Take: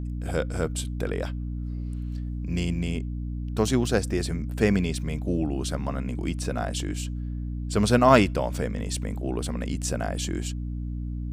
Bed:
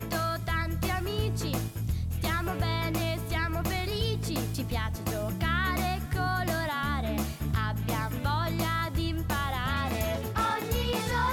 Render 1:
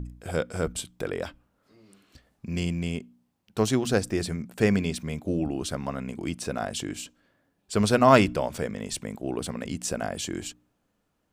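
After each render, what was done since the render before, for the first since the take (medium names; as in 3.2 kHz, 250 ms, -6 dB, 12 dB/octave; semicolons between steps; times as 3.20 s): de-hum 60 Hz, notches 5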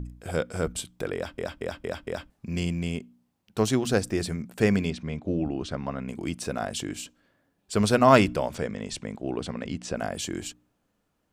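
1.15 s: stutter in place 0.23 s, 5 plays; 4.90–6.08 s: distance through air 130 m; 8.54–9.95 s: low-pass 7.9 kHz -> 4.3 kHz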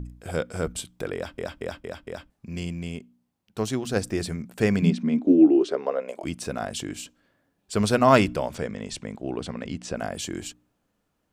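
1.80–3.96 s: gain -3.5 dB; 4.82–6.23 s: resonant high-pass 180 Hz -> 630 Hz, resonance Q 7.8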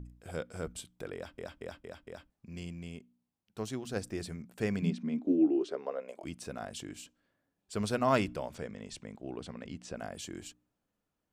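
trim -10.5 dB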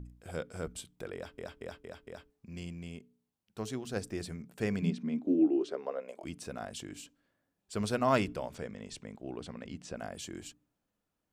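de-hum 143.6 Hz, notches 3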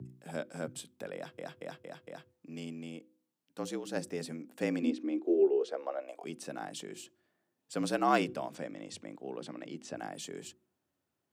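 frequency shift +73 Hz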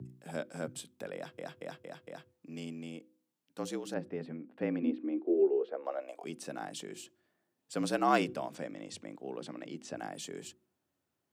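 3.94–5.85 s: distance through air 460 m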